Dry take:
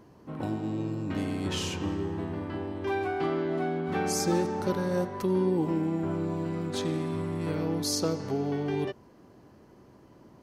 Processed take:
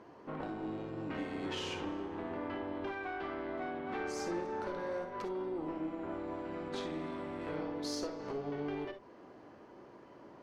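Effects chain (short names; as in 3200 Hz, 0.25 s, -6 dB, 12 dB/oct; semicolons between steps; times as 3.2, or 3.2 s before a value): LPF 7800 Hz 12 dB/oct; tone controls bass -14 dB, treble -11 dB; compressor 4:1, threshold -41 dBFS, peak gain reduction 13 dB; tube stage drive 34 dB, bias 0.6; on a send: reverb, pre-delay 3 ms, DRR 6.5 dB; on the sum: gain +6 dB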